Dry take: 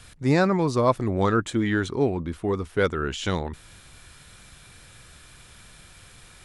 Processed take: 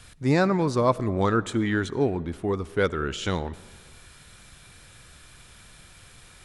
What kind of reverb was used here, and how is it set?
algorithmic reverb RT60 1.7 s, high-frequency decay 0.6×, pre-delay 35 ms, DRR 19 dB; trim -1 dB

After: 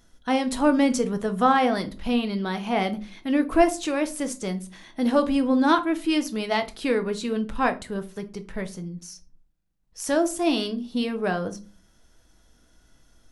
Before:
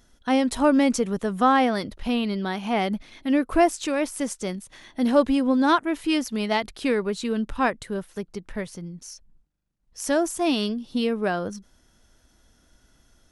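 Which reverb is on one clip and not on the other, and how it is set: simulated room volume 170 m³, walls furnished, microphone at 0.65 m; trim -1 dB

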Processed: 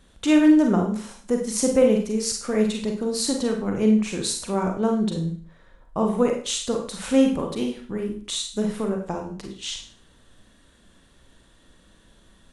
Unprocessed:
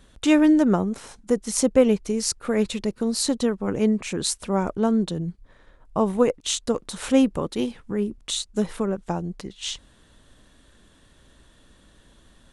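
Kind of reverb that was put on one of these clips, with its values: Schroeder reverb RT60 0.45 s, combs from 33 ms, DRR 2 dB; trim -2.5 dB

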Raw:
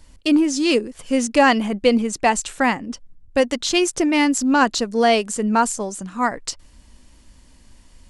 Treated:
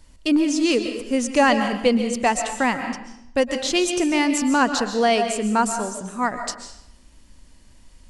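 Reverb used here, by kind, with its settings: algorithmic reverb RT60 0.77 s, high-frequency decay 0.9×, pre-delay 95 ms, DRR 7 dB; trim -2.5 dB

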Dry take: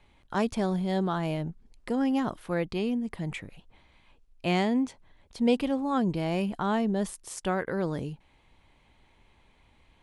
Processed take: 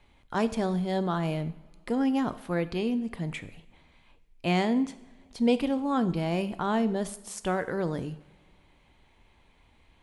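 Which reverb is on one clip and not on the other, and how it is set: two-slope reverb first 0.67 s, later 2.2 s, from -17 dB, DRR 12 dB

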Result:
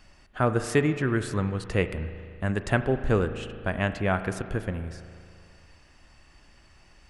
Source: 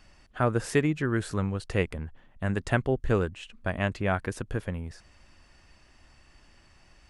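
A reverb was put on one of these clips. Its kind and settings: spring tank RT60 2.3 s, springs 37 ms, chirp 75 ms, DRR 10 dB; trim +1.5 dB

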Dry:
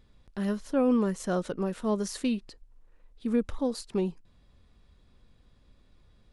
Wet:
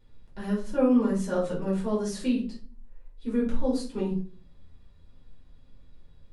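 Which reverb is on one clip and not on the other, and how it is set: simulated room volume 310 m³, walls furnished, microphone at 4.7 m; trim -8.5 dB

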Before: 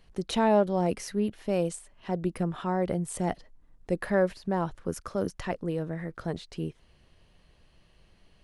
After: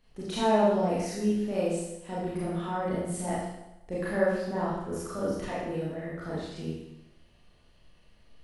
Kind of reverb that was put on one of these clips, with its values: Schroeder reverb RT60 0.91 s, combs from 26 ms, DRR -8.5 dB; trim -9 dB

